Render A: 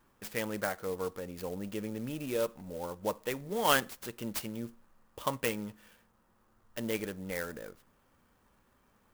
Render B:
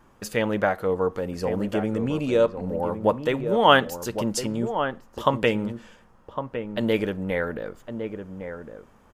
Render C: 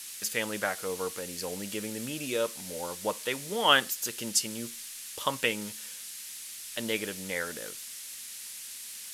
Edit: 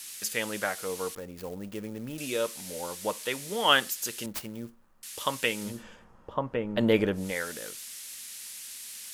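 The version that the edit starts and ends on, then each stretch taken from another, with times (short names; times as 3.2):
C
1.15–2.18 from A
4.26–5.03 from A
5.72–7.24 from B, crossfade 0.24 s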